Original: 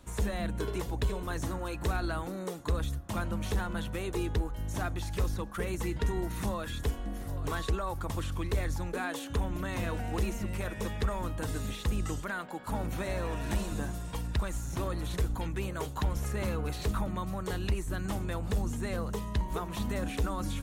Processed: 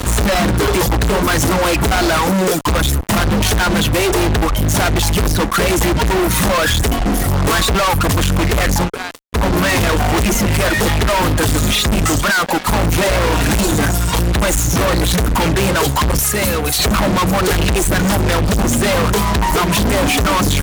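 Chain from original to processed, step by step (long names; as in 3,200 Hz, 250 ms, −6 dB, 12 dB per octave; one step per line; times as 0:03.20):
hum removal 384.7 Hz, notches 9
reverb reduction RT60 1.8 s
0:08.78–0:09.46: duck −23.5 dB, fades 0.13 s
0:16.19–0:16.79: first-order pre-emphasis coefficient 0.8
fuzz pedal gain 55 dB, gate −57 dBFS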